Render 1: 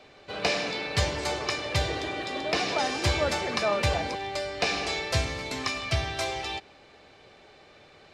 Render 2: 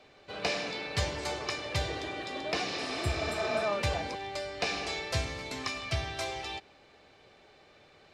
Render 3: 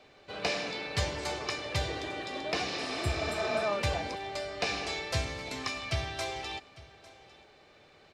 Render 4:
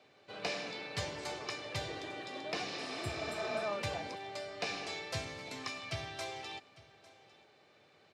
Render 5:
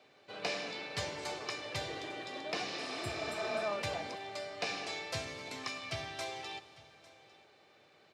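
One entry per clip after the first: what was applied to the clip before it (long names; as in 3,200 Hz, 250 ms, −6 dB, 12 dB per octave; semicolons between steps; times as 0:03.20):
healed spectral selection 0:02.73–0:03.60, 400–7,200 Hz both; level −5 dB
single-tap delay 851 ms −20 dB
high-pass filter 96 Hz 24 dB per octave; level −6 dB
low-shelf EQ 150 Hz −5.5 dB; four-comb reverb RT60 2.9 s, combs from 26 ms, DRR 15 dB; level +1 dB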